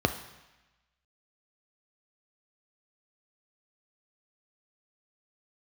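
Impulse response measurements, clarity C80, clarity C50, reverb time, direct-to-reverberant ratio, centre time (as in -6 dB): 14.0 dB, 11.5 dB, 1.0 s, 7.0 dB, 12 ms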